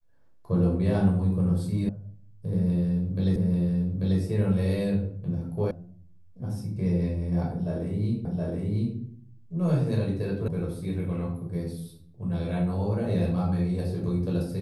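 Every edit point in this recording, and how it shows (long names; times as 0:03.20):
0:01.89: cut off before it has died away
0:03.36: the same again, the last 0.84 s
0:05.71: cut off before it has died away
0:08.25: the same again, the last 0.72 s
0:10.48: cut off before it has died away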